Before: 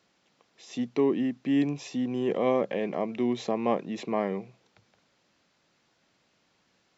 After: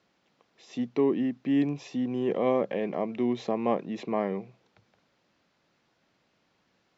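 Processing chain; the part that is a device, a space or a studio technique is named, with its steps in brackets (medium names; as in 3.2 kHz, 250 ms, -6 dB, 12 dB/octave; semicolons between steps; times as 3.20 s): through cloth (low-pass 6.4 kHz 12 dB/octave; treble shelf 3.3 kHz -15 dB); treble shelf 3.9 kHz +11 dB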